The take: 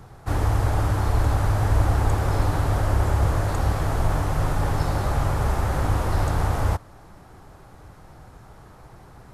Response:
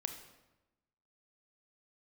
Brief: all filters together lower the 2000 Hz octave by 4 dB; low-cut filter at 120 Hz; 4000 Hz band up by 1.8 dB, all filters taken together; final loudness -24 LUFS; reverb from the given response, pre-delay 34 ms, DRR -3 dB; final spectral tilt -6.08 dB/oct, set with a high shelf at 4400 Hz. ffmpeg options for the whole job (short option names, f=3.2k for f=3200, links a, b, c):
-filter_complex "[0:a]highpass=120,equalizer=f=2k:t=o:g=-6,equalizer=f=4k:t=o:g=7,highshelf=f=4.4k:g=-5.5,asplit=2[a][b];[1:a]atrim=start_sample=2205,adelay=34[c];[b][c]afir=irnorm=-1:irlink=0,volume=3.5dB[d];[a][d]amix=inputs=2:normalize=0"